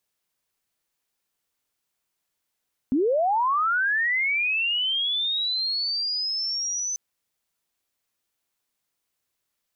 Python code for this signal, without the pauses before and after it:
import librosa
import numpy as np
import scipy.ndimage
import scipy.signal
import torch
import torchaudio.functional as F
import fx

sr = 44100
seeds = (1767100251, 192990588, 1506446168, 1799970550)

y = fx.chirp(sr, length_s=4.04, from_hz=240.0, to_hz=6100.0, law='linear', from_db=-18.5, to_db=-25.5)